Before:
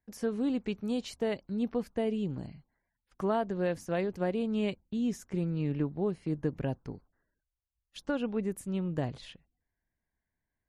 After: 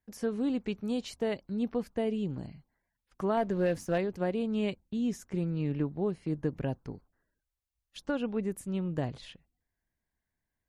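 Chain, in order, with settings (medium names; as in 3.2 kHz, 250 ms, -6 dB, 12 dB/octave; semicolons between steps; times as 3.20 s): 3.37–3.98 s: waveshaping leveller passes 1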